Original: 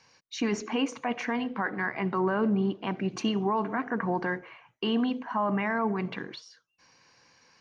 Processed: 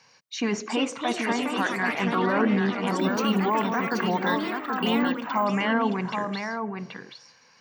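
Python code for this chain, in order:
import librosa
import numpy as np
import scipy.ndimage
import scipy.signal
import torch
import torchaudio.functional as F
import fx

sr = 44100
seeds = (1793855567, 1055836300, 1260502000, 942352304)

y = scipy.signal.sosfilt(scipy.signal.butter(2, 120.0, 'highpass', fs=sr, output='sos'), x)
y = fx.peak_eq(y, sr, hz=320.0, db=-6.5, octaves=0.5)
y = y + 10.0 ** (-5.5 / 20.0) * np.pad(y, (int(779 * sr / 1000.0), 0))[:len(y)]
y = fx.echo_pitch(y, sr, ms=436, semitones=4, count=3, db_per_echo=-6.0)
y = fx.resample_bad(y, sr, factor=2, down='none', up='hold', at=(2.99, 5.45))
y = y * librosa.db_to_amplitude(3.5)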